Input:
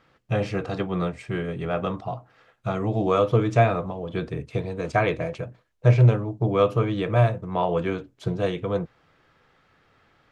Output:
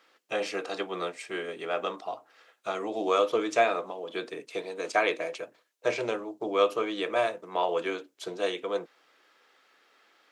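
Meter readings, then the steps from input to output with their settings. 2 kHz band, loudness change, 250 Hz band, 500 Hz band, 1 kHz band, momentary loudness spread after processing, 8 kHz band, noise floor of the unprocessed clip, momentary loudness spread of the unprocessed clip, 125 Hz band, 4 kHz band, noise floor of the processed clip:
0.0 dB, -6.0 dB, -9.5 dB, -3.5 dB, -2.5 dB, 12 LU, no reading, -63 dBFS, 11 LU, -32.0 dB, +3.0 dB, -68 dBFS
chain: high-pass 300 Hz 24 dB/octave; treble shelf 2.7 kHz +11.5 dB; trim -4 dB

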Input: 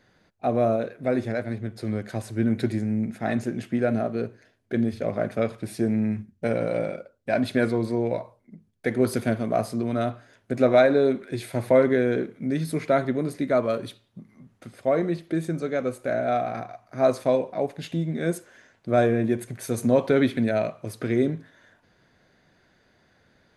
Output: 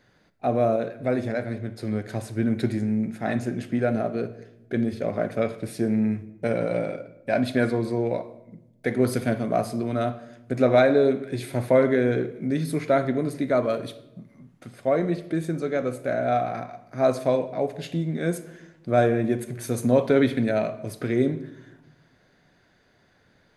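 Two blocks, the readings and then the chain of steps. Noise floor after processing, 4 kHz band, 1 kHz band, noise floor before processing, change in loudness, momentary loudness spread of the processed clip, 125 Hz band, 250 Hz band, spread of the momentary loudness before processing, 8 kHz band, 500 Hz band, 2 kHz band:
-62 dBFS, 0.0 dB, +1.0 dB, -65 dBFS, 0.0 dB, 11 LU, +1.0 dB, 0.0 dB, 10 LU, 0.0 dB, 0.0 dB, +0.5 dB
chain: simulated room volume 340 m³, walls mixed, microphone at 0.3 m

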